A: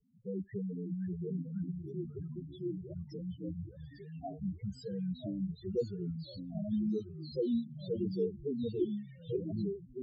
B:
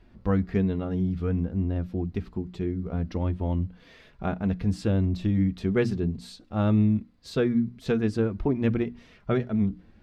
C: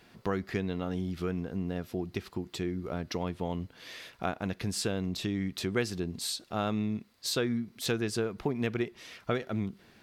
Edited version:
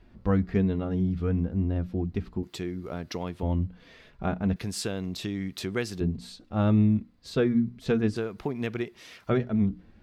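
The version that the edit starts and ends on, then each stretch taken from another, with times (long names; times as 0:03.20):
B
0:02.43–0:03.43: punch in from C
0:04.56–0:06.01: punch in from C
0:08.16–0:09.30: punch in from C
not used: A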